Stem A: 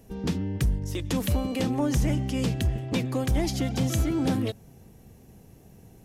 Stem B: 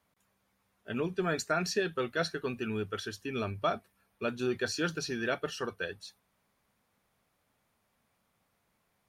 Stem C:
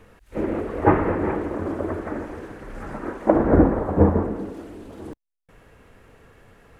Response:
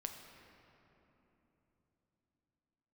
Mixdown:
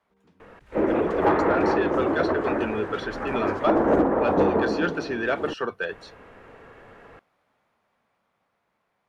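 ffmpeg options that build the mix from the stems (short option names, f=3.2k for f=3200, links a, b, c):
-filter_complex "[0:a]volume=-17dB[a];[1:a]dynaudnorm=f=290:g=13:m=5dB,volume=-2dB,asplit=2[b][c];[2:a]volume=8.5dB,asoftclip=hard,volume=-8.5dB,adelay=400,volume=0.5dB[d];[c]apad=whole_len=266551[e];[a][e]sidechaingate=range=-18dB:threshold=-60dB:ratio=16:detection=peak[f];[f][b][d]amix=inputs=3:normalize=0,highshelf=f=8.1k:g=-5.5,acrossover=split=180|4400[g][h][i];[g]acompressor=threshold=-33dB:ratio=4[j];[h]acompressor=threshold=-19dB:ratio=4[k];[i]acompressor=threshold=-50dB:ratio=4[l];[j][k][l]amix=inputs=3:normalize=0,asplit=2[m][n];[n]highpass=f=720:p=1,volume=16dB,asoftclip=type=tanh:threshold=-8.5dB[o];[m][o]amix=inputs=2:normalize=0,lowpass=f=1.1k:p=1,volume=-6dB"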